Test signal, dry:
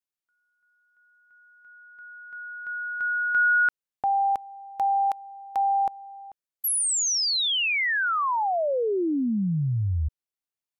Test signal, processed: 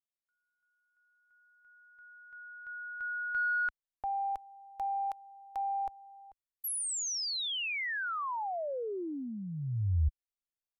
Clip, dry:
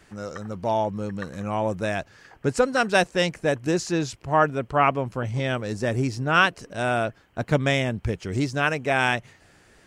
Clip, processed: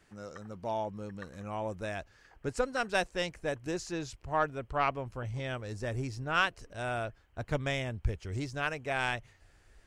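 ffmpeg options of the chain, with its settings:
-af "aeval=exprs='0.531*(cos(1*acos(clip(val(0)/0.531,-1,1)))-cos(1*PI/2))+0.0422*(cos(3*acos(clip(val(0)/0.531,-1,1)))-cos(3*PI/2))':c=same,asubboost=boost=8.5:cutoff=61,volume=-8dB"

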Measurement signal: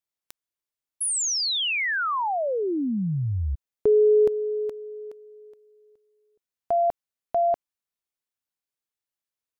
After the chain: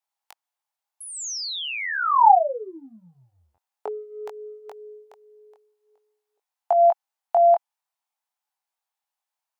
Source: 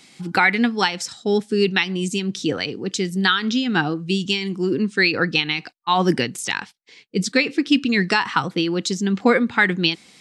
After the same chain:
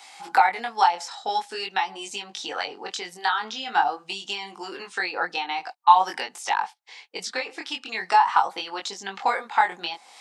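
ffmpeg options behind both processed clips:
-filter_complex "[0:a]acrossover=split=1100|5700[a][b][c];[a]acompressor=threshold=-26dB:ratio=4[d];[b]acompressor=threshold=-34dB:ratio=5[e];[c]acompressor=threshold=-49dB:ratio=3[f];[d][e][f]amix=inputs=3:normalize=0,highpass=f=820:t=q:w=4.9,flanger=delay=19.5:depth=3.8:speed=0.46,volume=5dB"

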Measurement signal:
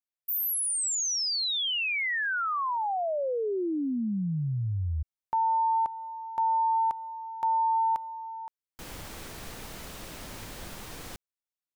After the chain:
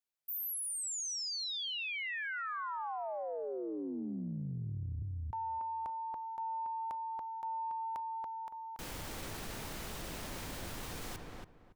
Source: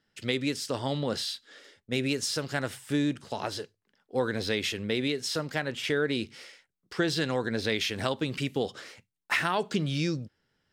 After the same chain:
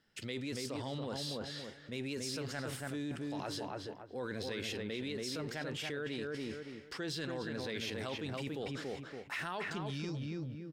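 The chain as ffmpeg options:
-filter_complex "[0:a]asplit=2[a][b];[b]adelay=282,lowpass=f=1.7k:p=1,volume=-4dB,asplit=2[c][d];[d]adelay=282,lowpass=f=1.7k:p=1,volume=0.23,asplit=2[e][f];[f]adelay=282,lowpass=f=1.7k:p=1,volume=0.23[g];[a][c][e][g]amix=inputs=4:normalize=0,areverse,acompressor=threshold=-39dB:ratio=6:attack=7.4:release=26:knee=6:detection=rms,areverse"

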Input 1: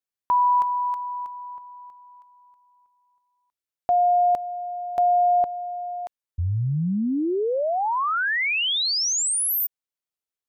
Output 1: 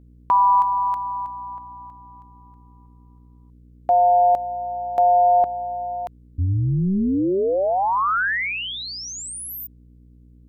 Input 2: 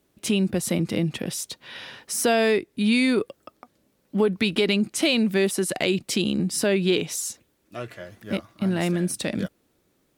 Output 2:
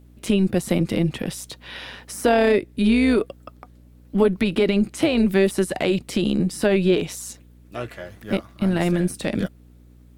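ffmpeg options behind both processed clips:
-filter_complex "[0:a]equalizer=f=5.7k:t=o:w=0.77:g=-2.5,acrossover=split=1900[a][b];[b]acompressor=threshold=-37dB:ratio=6:attack=2.4:release=20:detection=peak[c];[a][c]amix=inputs=2:normalize=0,aeval=exprs='val(0)+0.00282*(sin(2*PI*60*n/s)+sin(2*PI*2*60*n/s)/2+sin(2*PI*3*60*n/s)/3+sin(2*PI*4*60*n/s)/4+sin(2*PI*5*60*n/s)/5)':c=same,tremolo=f=190:d=0.462,volume=5.5dB"

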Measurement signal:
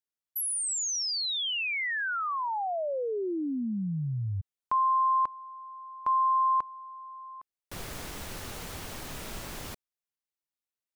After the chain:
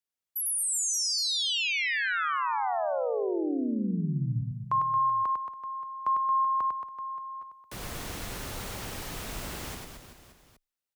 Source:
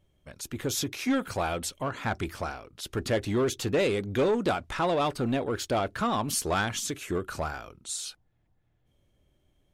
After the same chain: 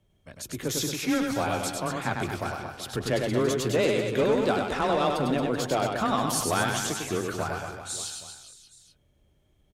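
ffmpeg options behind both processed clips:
-af "afreqshift=16,aecho=1:1:100|225|381.2|576.6|820.7:0.631|0.398|0.251|0.158|0.1"

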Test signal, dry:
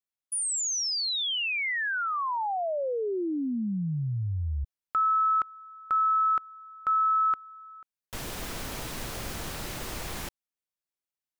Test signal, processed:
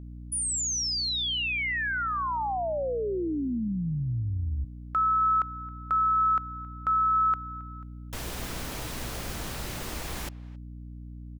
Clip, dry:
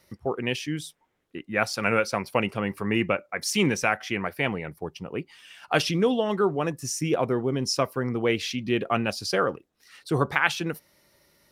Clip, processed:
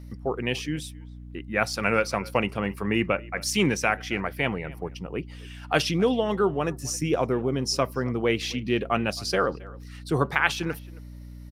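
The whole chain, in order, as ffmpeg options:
-filter_complex "[0:a]aeval=exprs='val(0)+0.01*(sin(2*PI*60*n/s)+sin(2*PI*2*60*n/s)/2+sin(2*PI*3*60*n/s)/3+sin(2*PI*4*60*n/s)/4+sin(2*PI*5*60*n/s)/5)':c=same,asplit=2[a][b];[b]adelay=270,highpass=300,lowpass=3.4k,asoftclip=type=hard:threshold=-12dB,volume=-21dB[c];[a][c]amix=inputs=2:normalize=0"

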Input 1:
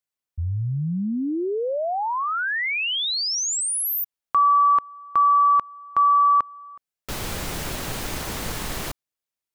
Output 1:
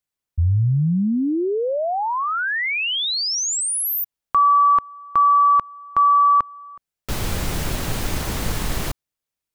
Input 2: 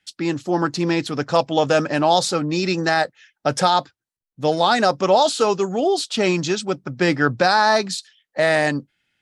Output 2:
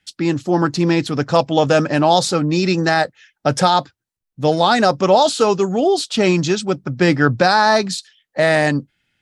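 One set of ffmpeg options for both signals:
-af "lowshelf=f=200:g=7.5,volume=2dB"

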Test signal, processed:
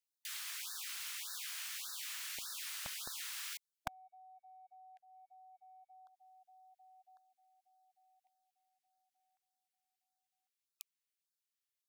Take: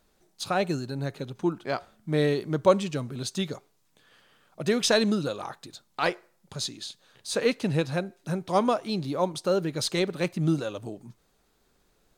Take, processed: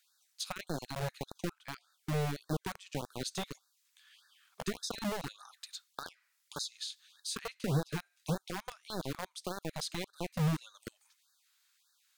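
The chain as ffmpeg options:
-filter_complex "[0:a]acrossover=split=170[a][b];[b]acompressor=threshold=-37dB:ratio=8[c];[a][c]amix=inputs=2:normalize=0,acrossover=split=1400[d][e];[d]aeval=exprs='val(0)*gte(abs(val(0)),0.0299)':c=same[f];[f][e]amix=inputs=2:normalize=0,afftfilt=real='re*(1-between(b*sr/1024,260*pow(2600/260,0.5+0.5*sin(2*PI*1.7*pts/sr))/1.41,260*pow(2600/260,0.5+0.5*sin(2*PI*1.7*pts/sr))*1.41))':imag='im*(1-between(b*sr/1024,260*pow(2600/260,0.5+0.5*sin(2*PI*1.7*pts/sr))/1.41,260*pow(2600/260,0.5+0.5*sin(2*PI*1.7*pts/sr))*1.41))':win_size=1024:overlap=0.75,volume=1dB"

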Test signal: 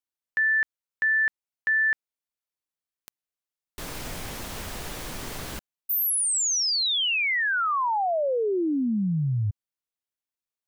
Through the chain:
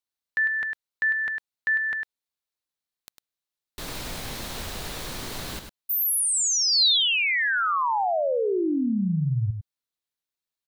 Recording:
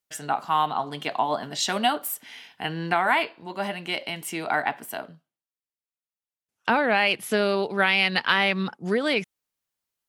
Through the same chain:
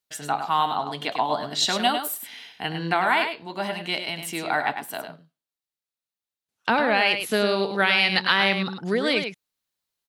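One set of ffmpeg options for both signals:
-af "equalizer=f=4k:w=3.1:g=6,aecho=1:1:102:0.422"

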